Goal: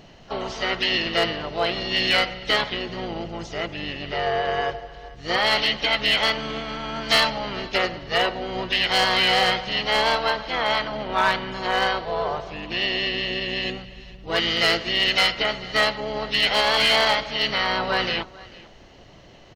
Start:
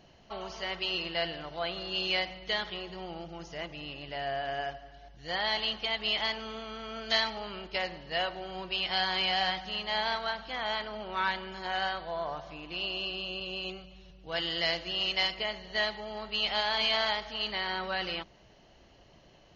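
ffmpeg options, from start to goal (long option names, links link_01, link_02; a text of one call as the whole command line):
ffmpeg -i in.wav -filter_complex "[0:a]aecho=1:1:446:0.0841,asplit=4[link_01][link_02][link_03][link_04];[link_02]asetrate=29433,aresample=44100,atempo=1.49831,volume=-5dB[link_05];[link_03]asetrate=35002,aresample=44100,atempo=1.25992,volume=-15dB[link_06];[link_04]asetrate=55563,aresample=44100,atempo=0.793701,volume=-14dB[link_07];[link_01][link_05][link_06][link_07]amix=inputs=4:normalize=0,asoftclip=type=hard:threshold=-21dB,volume=9dB" out.wav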